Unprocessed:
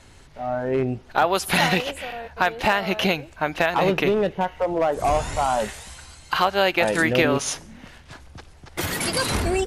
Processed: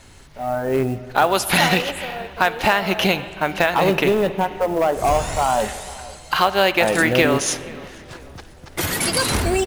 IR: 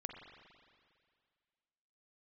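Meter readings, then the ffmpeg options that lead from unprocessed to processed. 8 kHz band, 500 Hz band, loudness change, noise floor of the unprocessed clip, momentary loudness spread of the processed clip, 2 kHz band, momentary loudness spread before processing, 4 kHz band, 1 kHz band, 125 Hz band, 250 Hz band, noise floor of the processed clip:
+5.5 dB, +3.0 dB, +3.0 dB, -49 dBFS, 16 LU, +3.0 dB, 12 LU, +3.5 dB, +3.0 dB, +3.0 dB, +3.0 dB, -43 dBFS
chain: -filter_complex "[0:a]acrusher=bits=7:mode=log:mix=0:aa=0.000001,asplit=2[a][b];[b]adelay=482,lowpass=f=2k:p=1,volume=-20.5dB,asplit=2[c][d];[d]adelay=482,lowpass=f=2k:p=1,volume=0.48,asplit=2[e][f];[f]adelay=482,lowpass=f=2k:p=1,volume=0.48,asplit=2[g][h];[h]adelay=482,lowpass=f=2k:p=1,volume=0.48[i];[a][c][e][g][i]amix=inputs=5:normalize=0,asplit=2[j][k];[1:a]atrim=start_sample=2205,highshelf=f=4.9k:g=10.5[l];[k][l]afir=irnorm=-1:irlink=0,volume=-4.5dB[m];[j][m]amix=inputs=2:normalize=0"

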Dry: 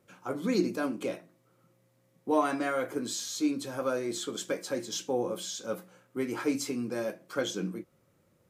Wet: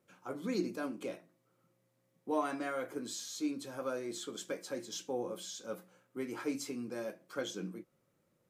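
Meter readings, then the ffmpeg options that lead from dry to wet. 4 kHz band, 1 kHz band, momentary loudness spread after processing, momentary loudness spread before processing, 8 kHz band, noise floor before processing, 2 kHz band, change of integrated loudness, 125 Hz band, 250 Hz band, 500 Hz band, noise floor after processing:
-7.0 dB, -7.0 dB, 10 LU, 10 LU, -7.0 dB, -69 dBFS, -7.0 dB, -7.0 dB, -8.0 dB, -7.0 dB, -7.0 dB, -77 dBFS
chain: -af "equalizer=f=79:t=o:w=0.49:g=-14,volume=-7dB"

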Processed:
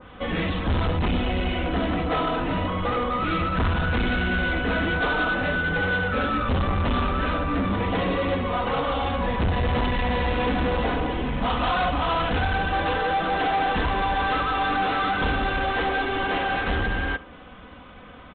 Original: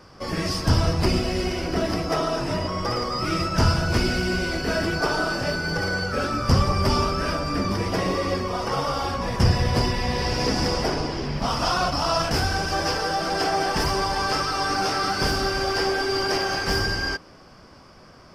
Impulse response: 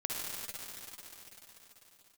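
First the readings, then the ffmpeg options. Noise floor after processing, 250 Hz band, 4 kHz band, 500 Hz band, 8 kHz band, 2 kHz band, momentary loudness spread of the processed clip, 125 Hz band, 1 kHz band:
-44 dBFS, 0.0 dB, -5.0 dB, -1.5 dB, under -40 dB, +2.0 dB, 3 LU, -2.0 dB, +1.5 dB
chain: -filter_complex "[0:a]equalizer=f=73:t=o:w=1.2:g=5.5,aecho=1:1:4:0.56,aresample=8000,asoftclip=type=tanh:threshold=-21.5dB,aresample=44100,crystalizer=i=3.5:c=0,asplit=2[a][b];[b]aecho=0:1:74:0.0891[c];[a][c]amix=inputs=2:normalize=0,adynamicequalizer=threshold=0.0126:dfrequency=1800:dqfactor=0.7:tfrequency=1800:tqfactor=0.7:attack=5:release=100:ratio=0.375:range=2:mode=cutabove:tftype=highshelf,volume=2dB"

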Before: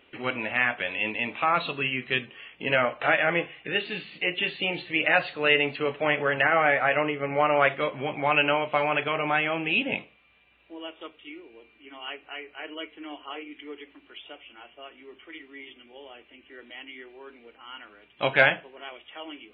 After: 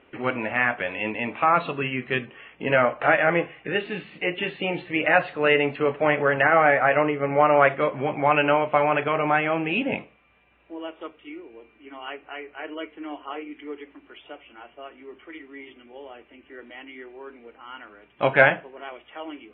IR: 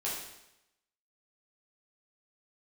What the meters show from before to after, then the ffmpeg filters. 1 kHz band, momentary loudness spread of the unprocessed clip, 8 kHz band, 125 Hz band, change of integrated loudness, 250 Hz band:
+4.5 dB, 22 LU, n/a, +5.0 dB, +2.5 dB, +5.0 dB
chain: -af "lowpass=1.8k,volume=5dB"

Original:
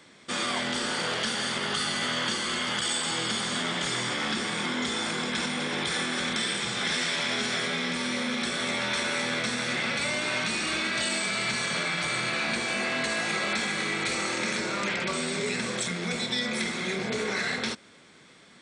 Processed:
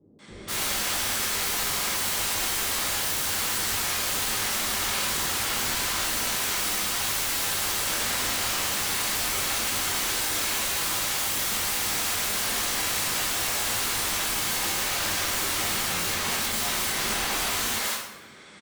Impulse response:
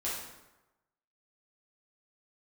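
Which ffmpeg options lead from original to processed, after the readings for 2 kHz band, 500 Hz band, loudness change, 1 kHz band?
-1.5 dB, -4.0 dB, +3.0 dB, +1.5 dB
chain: -filter_complex "[0:a]aeval=exprs='(mod(25.1*val(0)+1,2)-1)/25.1':c=same,acrossover=split=450[a][b];[b]adelay=190[c];[a][c]amix=inputs=2:normalize=0[d];[1:a]atrim=start_sample=2205,asetrate=48510,aresample=44100[e];[d][e]afir=irnorm=-1:irlink=0,volume=3dB"

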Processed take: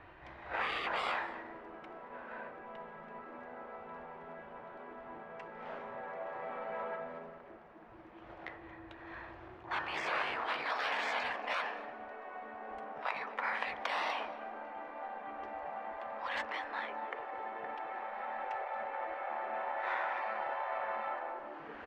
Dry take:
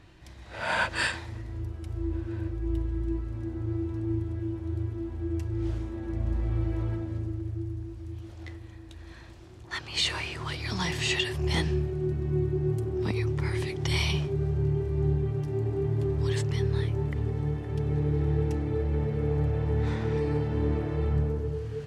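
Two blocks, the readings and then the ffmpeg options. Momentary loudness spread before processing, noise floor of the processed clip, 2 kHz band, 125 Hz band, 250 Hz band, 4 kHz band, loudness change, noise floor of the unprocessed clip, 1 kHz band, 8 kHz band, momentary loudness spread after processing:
10 LU, -53 dBFS, -3.0 dB, -37.0 dB, -21.0 dB, -11.5 dB, -10.0 dB, -46 dBFS, +4.5 dB, -20.0 dB, 14 LU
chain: -filter_complex "[0:a]bandreject=f=53.51:t=h:w=4,bandreject=f=107.02:t=h:w=4,bandreject=f=160.53:t=h:w=4,bandreject=f=214.04:t=h:w=4,bandreject=f=267.55:t=h:w=4,bandreject=f=321.06:t=h:w=4,bandreject=f=374.57:t=h:w=4,bandreject=f=428.08:t=h:w=4,bandreject=f=481.59:t=h:w=4,bandreject=f=535.1:t=h:w=4,bandreject=f=588.61:t=h:w=4,bandreject=f=642.12:t=h:w=4,bandreject=f=695.63:t=h:w=4,bandreject=f=749.14:t=h:w=4,bandreject=f=802.65:t=h:w=4,bandreject=f=856.16:t=h:w=4,bandreject=f=909.67:t=h:w=4,bandreject=f=963.18:t=h:w=4,bandreject=f=1.01669k:t=h:w=4,bandreject=f=1.0702k:t=h:w=4,bandreject=f=1.12371k:t=h:w=4,bandreject=f=1.17722k:t=h:w=4,bandreject=f=1.23073k:t=h:w=4,bandreject=f=1.28424k:t=h:w=4,bandreject=f=1.33775k:t=h:w=4,bandreject=f=1.39126k:t=h:w=4,bandreject=f=1.44477k:t=h:w=4,bandreject=f=1.49828k:t=h:w=4,bandreject=f=1.55179k:t=h:w=4,bandreject=f=1.6053k:t=h:w=4,bandreject=f=1.65881k:t=h:w=4,bandreject=f=1.71232k:t=h:w=4,bandreject=f=1.76583k:t=h:w=4,bandreject=f=1.81934k:t=h:w=4,afftfilt=real='re*lt(hypot(re,im),0.0447)':imag='im*lt(hypot(re,im),0.0447)':win_size=1024:overlap=0.75,aecho=1:1:229:0.133,adynamicsmooth=sensitivity=3:basefreq=2.1k,acrossover=split=530 2700:gain=0.126 1 0.2[a][b][c];[a][b][c]amix=inputs=3:normalize=0,volume=11dB"

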